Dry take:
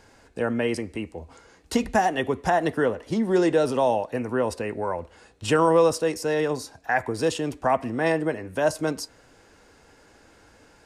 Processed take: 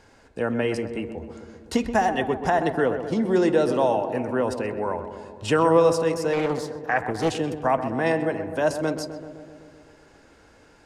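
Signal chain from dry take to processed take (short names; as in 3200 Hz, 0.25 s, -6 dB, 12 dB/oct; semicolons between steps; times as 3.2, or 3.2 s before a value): high shelf 9000 Hz -7.5 dB; darkening echo 0.128 s, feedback 72%, low-pass 1600 Hz, level -9 dB; 6.33–7.39 Doppler distortion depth 0.41 ms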